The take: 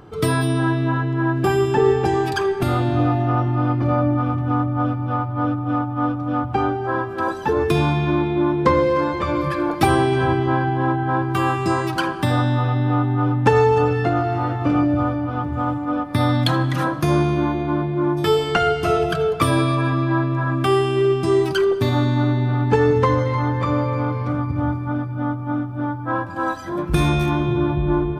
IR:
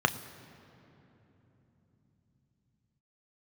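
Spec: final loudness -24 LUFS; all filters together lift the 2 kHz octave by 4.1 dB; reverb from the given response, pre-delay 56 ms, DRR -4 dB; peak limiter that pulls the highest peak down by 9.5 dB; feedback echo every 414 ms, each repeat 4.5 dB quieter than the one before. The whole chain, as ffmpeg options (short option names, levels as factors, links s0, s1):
-filter_complex "[0:a]equalizer=f=2000:t=o:g=5.5,alimiter=limit=0.282:level=0:latency=1,aecho=1:1:414|828|1242|1656|2070|2484|2898|3312|3726:0.596|0.357|0.214|0.129|0.0772|0.0463|0.0278|0.0167|0.01,asplit=2[s0][s1];[1:a]atrim=start_sample=2205,adelay=56[s2];[s1][s2]afir=irnorm=-1:irlink=0,volume=0.398[s3];[s0][s3]amix=inputs=2:normalize=0,volume=0.251"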